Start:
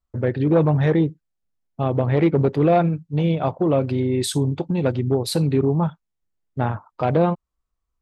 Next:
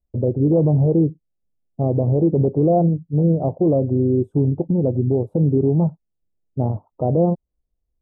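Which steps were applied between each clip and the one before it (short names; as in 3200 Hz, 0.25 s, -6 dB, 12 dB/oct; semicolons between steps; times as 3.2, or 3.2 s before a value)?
inverse Chebyshev low-pass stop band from 1700 Hz, stop band 50 dB; maximiser +11.5 dB; gain -8 dB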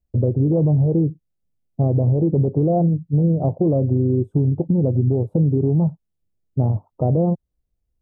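bell 110 Hz +6.5 dB 1.6 oct; compressor, threshold -14 dBFS, peak gain reduction 6 dB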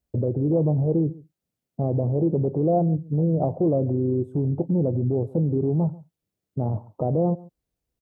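limiter -16 dBFS, peak gain reduction 8 dB; HPF 230 Hz 6 dB/oct; echo 0.139 s -21.5 dB; gain +4 dB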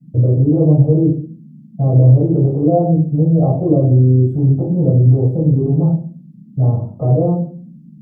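band noise 150–240 Hz -46 dBFS; reverb RT60 0.40 s, pre-delay 3 ms, DRR -6 dB; gain -8.5 dB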